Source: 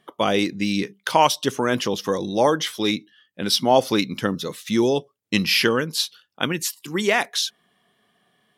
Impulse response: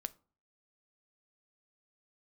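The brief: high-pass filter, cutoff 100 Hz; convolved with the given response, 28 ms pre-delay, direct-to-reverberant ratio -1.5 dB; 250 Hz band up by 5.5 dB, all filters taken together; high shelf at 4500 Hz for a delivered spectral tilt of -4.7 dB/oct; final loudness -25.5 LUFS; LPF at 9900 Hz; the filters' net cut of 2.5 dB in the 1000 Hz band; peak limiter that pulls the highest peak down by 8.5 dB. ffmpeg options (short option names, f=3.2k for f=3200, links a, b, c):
-filter_complex "[0:a]highpass=100,lowpass=9.9k,equalizer=f=250:t=o:g=7.5,equalizer=f=1k:t=o:g=-3.5,highshelf=f=4.5k:g=-4.5,alimiter=limit=-10.5dB:level=0:latency=1,asplit=2[a][b];[1:a]atrim=start_sample=2205,adelay=28[c];[b][c]afir=irnorm=-1:irlink=0,volume=3.5dB[d];[a][d]amix=inputs=2:normalize=0,volume=-6.5dB"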